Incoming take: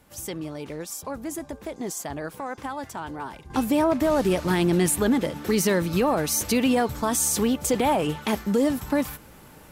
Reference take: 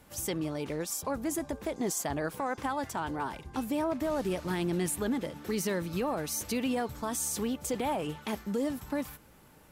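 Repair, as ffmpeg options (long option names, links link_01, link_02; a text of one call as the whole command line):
ffmpeg -i in.wav -af "asetnsamples=nb_out_samples=441:pad=0,asendcmd='3.5 volume volume -9.5dB',volume=0dB" out.wav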